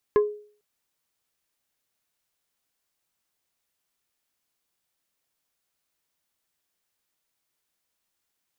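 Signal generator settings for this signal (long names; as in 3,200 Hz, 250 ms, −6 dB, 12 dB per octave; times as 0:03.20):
struck wood plate, length 0.45 s, lowest mode 418 Hz, decay 0.46 s, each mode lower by 9 dB, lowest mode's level −13 dB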